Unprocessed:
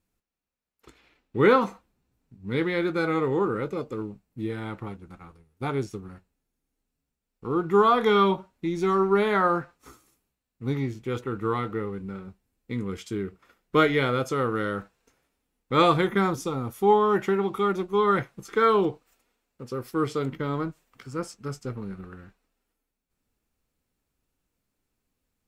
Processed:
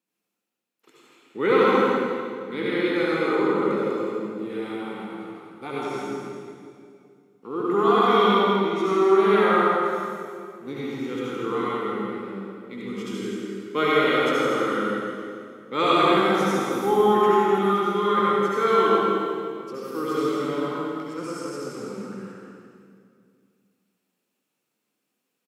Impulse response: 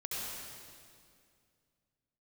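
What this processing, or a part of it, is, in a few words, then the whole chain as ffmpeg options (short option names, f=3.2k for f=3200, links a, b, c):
PA in a hall: -filter_complex "[0:a]highpass=f=200:w=0.5412,highpass=f=200:w=1.3066,equalizer=f=2.8k:t=o:w=0.5:g=3.5,aecho=1:1:164:0.398[a];[1:a]atrim=start_sample=2205[b];[a][b]afir=irnorm=-1:irlink=0"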